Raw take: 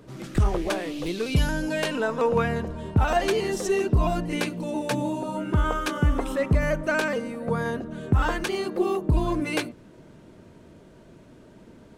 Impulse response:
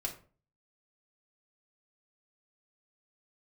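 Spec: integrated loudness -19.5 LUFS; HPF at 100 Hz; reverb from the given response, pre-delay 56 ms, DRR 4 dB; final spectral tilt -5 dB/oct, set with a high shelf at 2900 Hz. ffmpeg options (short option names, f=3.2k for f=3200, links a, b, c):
-filter_complex "[0:a]highpass=100,highshelf=f=2.9k:g=5.5,asplit=2[a][b];[1:a]atrim=start_sample=2205,adelay=56[c];[b][c]afir=irnorm=-1:irlink=0,volume=-5.5dB[d];[a][d]amix=inputs=2:normalize=0,volume=5dB"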